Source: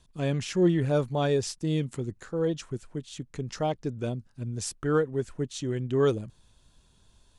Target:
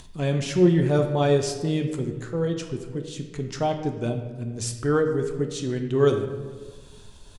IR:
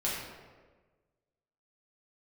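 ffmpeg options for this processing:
-filter_complex "[0:a]acompressor=mode=upward:threshold=-40dB:ratio=2.5,asplit=2[a][b];[b]adelay=443.1,volume=-26dB,highshelf=f=4k:g=-9.97[c];[a][c]amix=inputs=2:normalize=0,asplit=2[d][e];[1:a]atrim=start_sample=2205[f];[e][f]afir=irnorm=-1:irlink=0,volume=-8dB[g];[d][g]amix=inputs=2:normalize=0"

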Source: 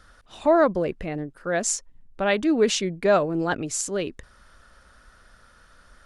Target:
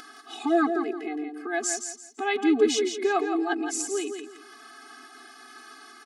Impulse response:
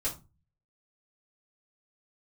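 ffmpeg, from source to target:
-af "acompressor=mode=upward:threshold=-27dB:ratio=2.5,aecho=1:1:168|336|504:0.447|0.121|0.0326,afftfilt=real='re*eq(mod(floor(b*sr/1024/220),2),1)':imag='im*eq(mod(floor(b*sr/1024/220),2),1)':win_size=1024:overlap=0.75"

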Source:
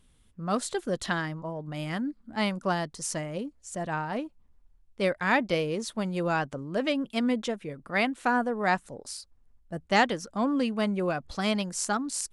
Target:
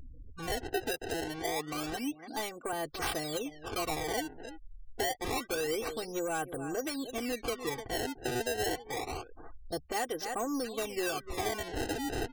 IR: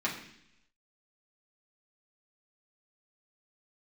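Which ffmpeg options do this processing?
-filter_complex "[0:a]equalizer=f=540:w=3:g=8,aecho=1:1:297:0.119,acompressor=threshold=-30dB:ratio=6,asettb=1/sr,asplit=3[a][b][c];[a]atrim=end=0.844[d];[b]atrim=start=0.84:end=2.73,asetpts=PTS-STARTPTS,afade=t=in:d=0.004:c=qsin,afade=t=out:st=1.886:d=0.004:c=qsin,highpass=f=170:w=0.5412,highpass=f=170:w=1.3066[e];[c]atrim=start=2.726[f];[d][e]acrossfade=d=0.004:c1=hsin:c2=qsin[g];[g][f]acrossfade=d=0.004:c1=qsin:c2=hsin,acrusher=samples=22:mix=1:aa=0.000001:lfo=1:lforange=35.2:lforate=0.27,asoftclip=type=tanh:threshold=-28.5dB,afftfilt=real='re*gte(hypot(re,im),0.00158)':imag='im*gte(hypot(re,im),0.00158)':win_size=1024:overlap=0.75,acompressor=mode=upward:threshold=-40dB:ratio=2.5,afftdn=nr=24:nf=-56,highshelf=f=4.1k:g=6,aecho=1:1:2.6:0.84"

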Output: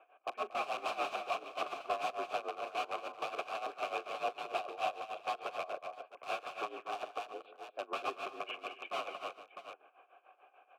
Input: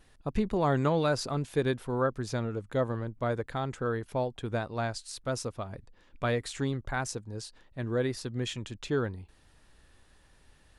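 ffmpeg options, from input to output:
-filter_complex "[0:a]asplit=2[a][b];[b]acompressor=threshold=-42dB:ratio=8,volume=-1.5dB[c];[a][c]amix=inputs=2:normalize=0,highpass=f=340:t=q:w=0.5412,highpass=f=340:t=q:w=1.307,lowpass=f=3.2k:t=q:w=0.5176,lowpass=f=3.2k:t=q:w=0.7071,lowpass=f=3.2k:t=q:w=1.932,afreqshift=66,asetrate=38170,aresample=44100,atempo=1.15535,aeval=exprs='(mod(26.6*val(0)+1,2)-1)/26.6':c=same,asplit=3[d][e][f];[d]bandpass=f=730:t=q:w=8,volume=0dB[g];[e]bandpass=f=1.09k:t=q:w=8,volume=-6dB[h];[f]bandpass=f=2.44k:t=q:w=8,volume=-9dB[i];[g][h][i]amix=inputs=3:normalize=0,asplit=2[j][k];[k]aecho=0:1:41|139|233|274|384|656:0.133|0.2|0.531|0.126|0.133|0.282[l];[j][l]amix=inputs=2:normalize=0,tremolo=f=6.8:d=0.81,volume=11.5dB"

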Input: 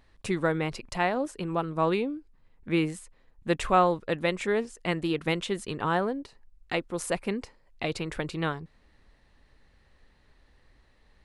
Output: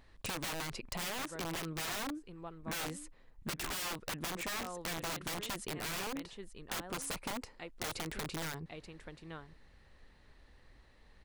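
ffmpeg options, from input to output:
-af "aecho=1:1:881:0.126,aeval=exprs='(mod(20*val(0)+1,2)-1)/20':c=same,acompressor=threshold=-37dB:ratio=6"

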